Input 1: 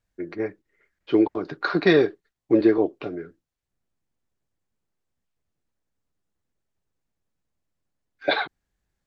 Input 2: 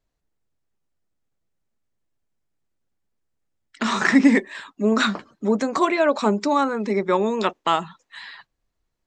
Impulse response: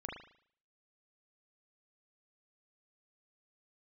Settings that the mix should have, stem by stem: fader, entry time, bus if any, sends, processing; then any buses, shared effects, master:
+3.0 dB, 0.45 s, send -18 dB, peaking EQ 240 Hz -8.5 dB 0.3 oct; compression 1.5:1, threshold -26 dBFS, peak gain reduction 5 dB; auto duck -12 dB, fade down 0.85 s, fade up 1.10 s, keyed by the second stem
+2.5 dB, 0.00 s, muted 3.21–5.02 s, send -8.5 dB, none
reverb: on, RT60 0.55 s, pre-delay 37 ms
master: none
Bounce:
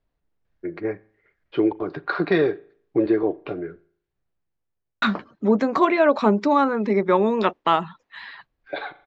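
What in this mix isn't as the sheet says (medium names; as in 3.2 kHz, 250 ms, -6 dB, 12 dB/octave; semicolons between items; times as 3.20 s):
stem 2: send off; master: extra distance through air 220 m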